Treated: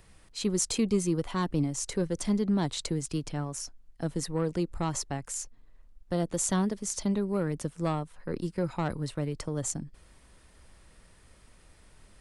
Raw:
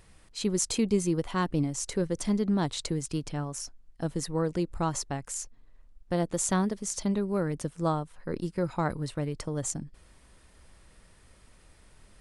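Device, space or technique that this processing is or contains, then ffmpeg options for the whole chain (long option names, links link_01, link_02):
one-band saturation: -filter_complex "[0:a]acrossover=split=290|2500[link_01][link_02][link_03];[link_02]asoftclip=type=tanh:threshold=-24dB[link_04];[link_01][link_04][link_03]amix=inputs=3:normalize=0"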